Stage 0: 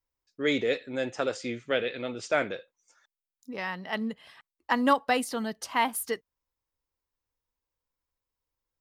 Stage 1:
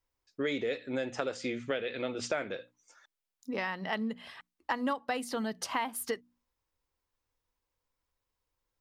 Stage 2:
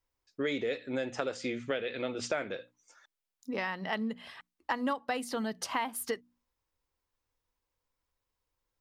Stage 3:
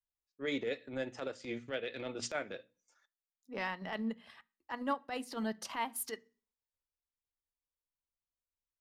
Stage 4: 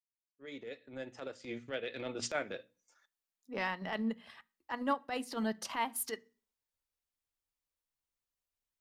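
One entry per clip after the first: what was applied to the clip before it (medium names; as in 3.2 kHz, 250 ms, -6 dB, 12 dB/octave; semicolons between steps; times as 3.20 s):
treble shelf 7.3 kHz -5.5 dB; hum notches 60/120/180/240/300 Hz; compression 5:1, threshold -35 dBFS, peak gain reduction 16 dB; trim +4.5 dB
no audible change
transient shaper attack -11 dB, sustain -7 dB; on a send at -15 dB: reverberation RT60 0.40 s, pre-delay 3 ms; on the sum: three bands expanded up and down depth 40%; trim -2 dB
fade-in on the opening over 2.36 s; trim +2 dB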